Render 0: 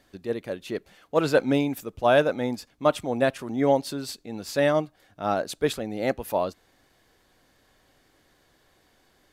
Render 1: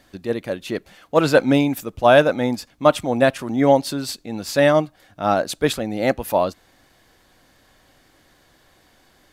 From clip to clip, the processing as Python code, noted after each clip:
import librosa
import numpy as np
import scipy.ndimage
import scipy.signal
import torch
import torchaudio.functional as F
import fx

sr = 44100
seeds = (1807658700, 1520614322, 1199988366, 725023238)

y = fx.peak_eq(x, sr, hz=420.0, db=-4.5, octaves=0.32)
y = F.gain(torch.from_numpy(y), 7.0).numpy()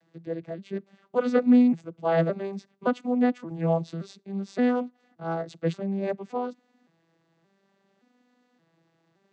y = fx.vocoder_arp(x, sr, chord='minor triad', root=52, every_ms=572)
y = F.gain(torch.from_numpy(y), -6.0).numpy()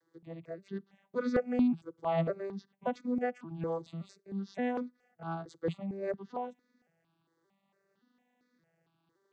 y = fx.phaser_held(x, sr, hz=4.4, low_hz=700.0, high_hz=2900.0)
y = F.gain(torch.from_numpy(y), -4.0).numpy()